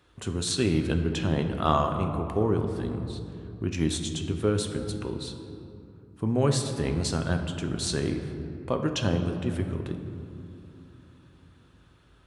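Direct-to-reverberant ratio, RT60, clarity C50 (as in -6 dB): 5.0 dB, 2.9 s, 7.0 dB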